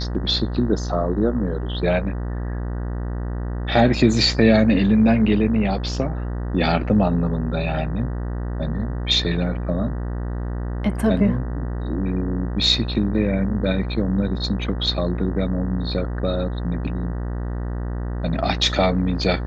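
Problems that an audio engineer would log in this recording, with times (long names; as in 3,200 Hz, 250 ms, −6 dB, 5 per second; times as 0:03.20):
mains buzz 60 Hz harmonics 32 −26 dBFS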